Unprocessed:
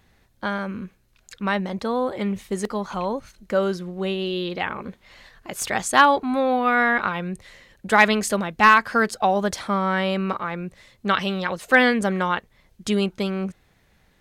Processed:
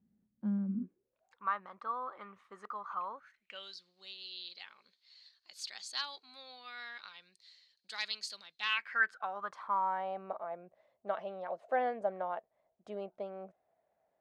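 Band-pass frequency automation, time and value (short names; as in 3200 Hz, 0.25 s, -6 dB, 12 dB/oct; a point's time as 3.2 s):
band-pass, Q 8.1
0.75 s 210 Hz
1.47 s 1200 Hz
3.12 s 1200 Hz
3.75 s 4400 Hz
8.52 s 4400 Hz
9.04 s 1600 Hz
10.32 s 660 Hz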